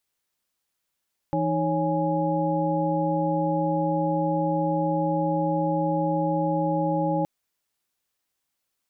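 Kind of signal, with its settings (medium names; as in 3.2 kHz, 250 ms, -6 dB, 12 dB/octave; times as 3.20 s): chord E3/D#4/C#5/G#5 sine, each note -27 dBFS 5.92 s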